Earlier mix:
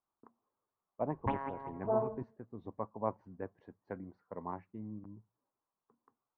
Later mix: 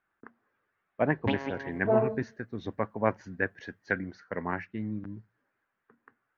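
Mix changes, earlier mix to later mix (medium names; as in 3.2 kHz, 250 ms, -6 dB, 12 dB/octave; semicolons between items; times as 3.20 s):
speech: add resonant low-pass 1.6 kHz, resonance Q 3.7; first sound: add band-pass filter 330 Hz, Q 0.65; master: remove four-pole ladder low-pass 1.2 kHz, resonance 55%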